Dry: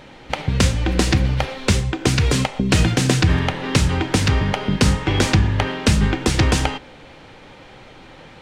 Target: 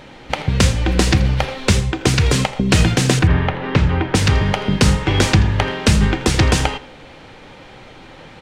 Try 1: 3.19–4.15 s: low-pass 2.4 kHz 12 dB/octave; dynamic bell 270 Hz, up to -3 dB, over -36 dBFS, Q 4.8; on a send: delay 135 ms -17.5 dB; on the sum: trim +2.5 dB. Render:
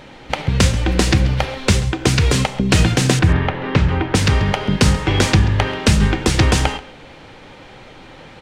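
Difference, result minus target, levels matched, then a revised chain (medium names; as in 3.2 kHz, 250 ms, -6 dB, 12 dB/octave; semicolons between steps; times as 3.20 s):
echo 53 ms late
3.19–4.15 s: low-pass 2.4 kHz 12 dB/octave; dynamic bell 270 Hz, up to -3 dB, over -36 dBFS, Q 4.8; on a send: delay 82 ms -17.5 dB; on the sum: trim +2.5 dB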